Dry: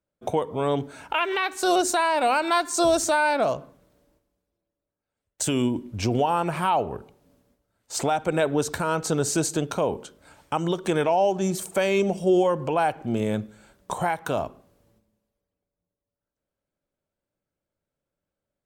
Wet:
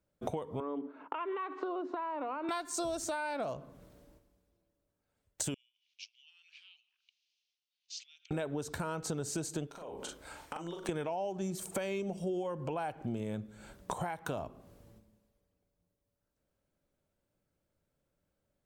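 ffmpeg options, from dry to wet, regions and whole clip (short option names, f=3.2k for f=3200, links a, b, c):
-filter_complex "[0:a]asettb=1/sr,asplit=3[a][b][c];[a]atrim=end=0.604[d];[b]atrim=start=0.6:end=2.49,asetpts=PTS-STARTPTS,afade=t=in:d=0.004:c=qsin,afade=t=out:st=1.886:d=0.004:c=qsin,agate=range=-33dB:threshold=-37dB:ratio=3:release=100:detection=peak,acompressor=threshold=-31dB:ratio=2.5:attack=3.2:release=140:knee=1:detection=peak,highpass=f=260:w=0.5412,highpass=f=260:w=1.3066,equalizer=f=280:t=q:w=4:g=8,equalizer=f=420:t=q:w=4:g=3,equalizer=f=770:t=q:w=4:g=-4,equalizer=f=1.1k:t=q:w=4:g=9,equalizer=f=1.6k:t=q:w=4:g=-6,equalizer=f=2.3k:t=q:w=4:g=-7,lowpass=f=2.4k:w=0.5412,lowpass=f=2.4k:w=1.3066[e];[c]atrim=start=2.486[f];[d][e]acrossfade=d=0.004:c1=hsin:c2=qsin[g];[g][f]acrossfade=d=0.004:c1=qsin:c2=hsin,asettb=1/sr,asplit=3[h][i][j];[h]atrim=end=5.544[k];[i]atrim=start=5.54:end=8.31,asetpts=PTS-STARTPTS,afade=t=in:d=0.004:c=qsin,afade=t=out:st=2.766:d=0.004:c=qsin,aemphasis=mode=reproduction:type=50kf,acompressor=threshold=-39dB:ratio=5:attack=3.2:release=140:knee=1:detection=peak,asuperpass=centerf=4100:order=8:qfactor=1.1[l];[j]atrim=start=8.306[m];[k][l]acrossfade=d=0.004:c1=hsin:c2=qsin[n];[n][m]acrossfade=d=0.004:c1=qsin:c2=hsin,asettb=1/sr,asplit=3[o][p][q];[o]atrim=end=9.674[r];[p]atrim=start=9.67:end=10.89,asetpts=PTS-STARTPTS,afade=t=in:d=0.004:c=qsin,afade=t=out:st=1.216:d=0.004:c=qsin,acompressor=threshold=-38dB:ratio=16:attack=3.2:release=140:knee=1:detection=peak,equalizer=f=130:t=o:w=1.8:g=-12,asplit=2[s][t];[t]adelay=41,volume=-3.5dB[u];[s][u]amix=inputs=2:normalize=0,atrim=end_sample=53802[v];[q]atrim=start=10.886[w];[r][v]acrossfade=d=0.004:c1=hsin:c2=qsin[x];[x][w]acrossfade=d=0.004:c1=qsin:c2=hsin,lowshelf=f=230:g=5,acompressor=threshold=-37dB:ratio=6,volume=2dB"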